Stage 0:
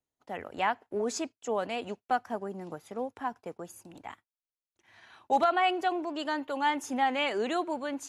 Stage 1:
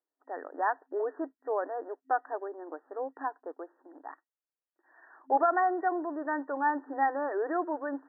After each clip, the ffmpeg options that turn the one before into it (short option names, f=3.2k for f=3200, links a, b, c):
-af "afftfilt=real='re*between(b*sr/4096,260,1900)':imag='im*between(b*sr/4096,260,1900)':win_size=4096:overlap=0.75"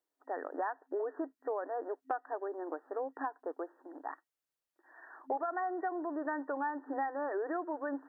-af "acompressor=threshold=-36dB:ratio=6,volume=3dB"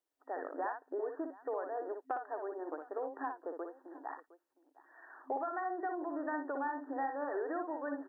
-af "aecho=1:1:59|711:0.501|0.106,volume=-2.5dB"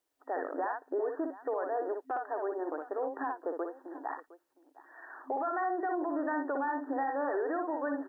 -af "alimiter=level_in=7.5dB:limit=-24dB:level=0:latency=1:release=16,volume=-7.5dB,volume=6.5dB"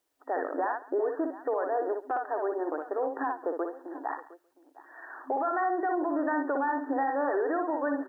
-af "aecho=1:1:137:0.106,volume=4dB"